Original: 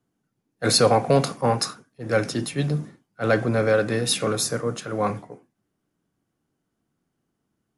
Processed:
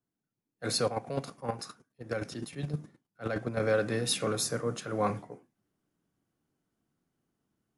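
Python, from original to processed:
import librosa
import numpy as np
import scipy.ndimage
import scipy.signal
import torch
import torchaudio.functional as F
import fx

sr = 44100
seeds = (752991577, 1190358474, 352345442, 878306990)

y = fx.rider(x, sr, range_db=10, speed_s=2.0)
y = fx.chopper(y, sr, hz=9.6, depth_pct=60, duty_pct=20, at=(0.86, 3.6))
y = y * librosa.db_to_amplitude(-8.0)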